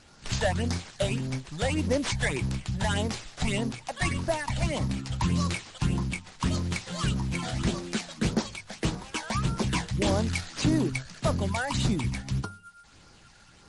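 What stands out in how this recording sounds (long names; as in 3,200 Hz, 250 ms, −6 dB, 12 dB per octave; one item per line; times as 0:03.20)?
phaser sweep stages 8, 1.7 Hz, lowest notch 310–2,900 Hz
aliases and images of a low sample rate 11,000 Hz, jitter 20%
MP3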